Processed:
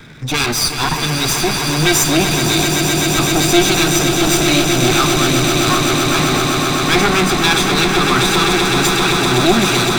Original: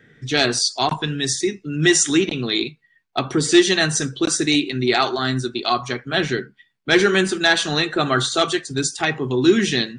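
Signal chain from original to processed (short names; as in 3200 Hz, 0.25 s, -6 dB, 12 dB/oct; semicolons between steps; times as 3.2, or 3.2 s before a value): minimum comb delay 0.81 ms; swelling echo 0.128 s, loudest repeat 8, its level -9.5 dB; power-law curve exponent 0.7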